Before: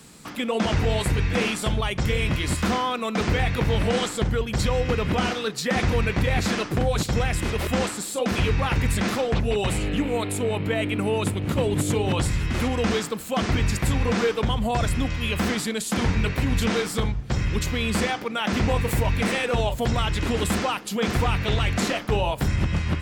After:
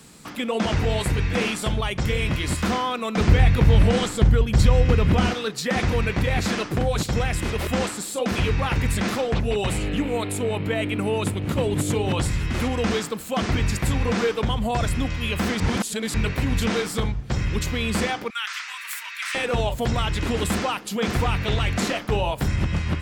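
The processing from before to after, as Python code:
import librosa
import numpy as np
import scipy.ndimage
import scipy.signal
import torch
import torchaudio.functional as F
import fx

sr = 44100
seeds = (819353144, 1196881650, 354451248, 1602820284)

y = fx.low_shelf(x, sr, hz=160.0, db=11.0, at=(3.17, 5.34))
y = fx.steep_highpass(y, sr, hz=1200.0, slope=36, at=(18.3, 19.35))
y = fx.edit(y, sr, fx.reverse_span(start_s=15.6, length_s=0.54), tone=tone)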